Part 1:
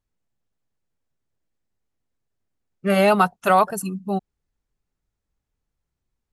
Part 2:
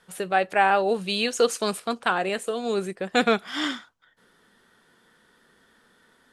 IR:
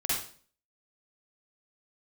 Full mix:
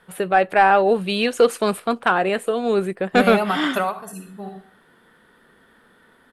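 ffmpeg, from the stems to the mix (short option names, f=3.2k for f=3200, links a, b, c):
-filter_complex "[0:a]acompressor=threshold=-19dB:ratio=6,adelay=300,volume=-7dB,asplit=2[a][b];[b]volume=-18.5dB[c];[1:a]equalizer=f=6.1k:t=o:w=1.2:g=-14,volume=0dB,asplit=2[d][e];[e]apad=whole_len=292124[f];[a][f]sidechaingate=range=-12dB:threshold=-49dB:ratio=16:detection=peak[g];[2:a]atrim=start_sample=2205[h];[c][h]afir=irnorm=-1:irlink=0[i];[g][d][i]amix=inputs=3:normalize=0,acontrast=69"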